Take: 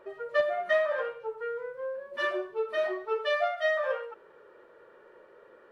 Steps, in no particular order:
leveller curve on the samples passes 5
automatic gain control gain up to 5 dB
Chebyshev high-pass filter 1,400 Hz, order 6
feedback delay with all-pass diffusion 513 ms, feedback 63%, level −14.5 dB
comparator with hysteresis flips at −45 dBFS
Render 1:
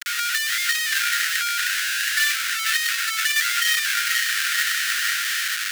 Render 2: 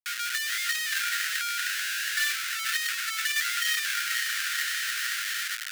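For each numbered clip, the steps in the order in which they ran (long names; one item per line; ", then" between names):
feedback delay with all-pass diffusion, then automatic gain control, then leveller curve on the samples, then comparator with hysteresis, then Chebyshev high-pass filter
feedback delay with all-pass diffusion, then automatic gain control, then comparator with hysteresis, then leveller curve on the samples, then Chebyshev high-pass filter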